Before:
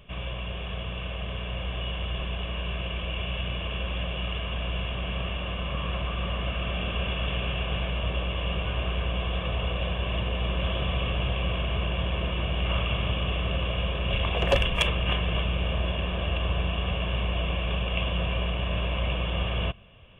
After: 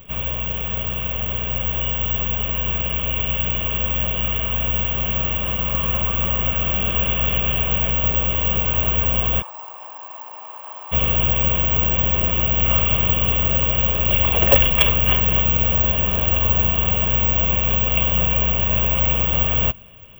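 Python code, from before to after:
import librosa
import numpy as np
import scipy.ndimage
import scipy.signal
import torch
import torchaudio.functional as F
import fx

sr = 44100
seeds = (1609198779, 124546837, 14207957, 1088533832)

y = fx.ladder_bandpass(x, sr, hz=950.0, resonance_pct=80, at=(9.41, 10.91), fade=0.02)
y = (np.kron(scipy.signal.resample_poly(y, 1, 2), np.eye(2)[0]) * 2)[:len(y)]
y = y * librosa.db_to_amplitude(5.5)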